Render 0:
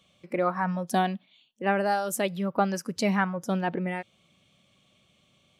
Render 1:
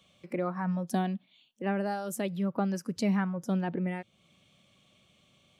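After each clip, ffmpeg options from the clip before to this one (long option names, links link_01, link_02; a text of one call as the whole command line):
ffmpeg -i in.wav -filter_complex "[0:a]acrossover=split=350[link_01][link_02];[link_02]acompressor=threshold=-49dB:ratio=1.5[link_03];[link_01][link_03]amix=inputs=2:normalize=0" out.wav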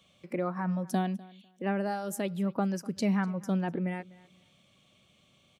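ffmpeg -i in.wav -af "aecho=1:1:249|498:0.0841|0.0168" out.wav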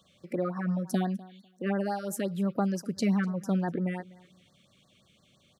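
ffmpeg -i in.wav -af "afftfilt=real='re*(1-between(b*sr/1024,770*pow(2900/770,0.5+0.5*sin(2*PI*5.8*pts/sr))/1.41,770*pow(2900/770,0.5+0.5*sin(2*PI*5.8*pts/sr))*1.41))':imag='im*(1-between(b*sr/1024,770*pow(2900/770,0.5+0.5*sin(2*PI*5.8*pts/sr))/1.41,770*pow(2900/770,0.5+0.5*sin(2*PI*5.8*pts/sr))*1.41))':win_size=1024:overlap=0.75,volume=1.5dB" out.wav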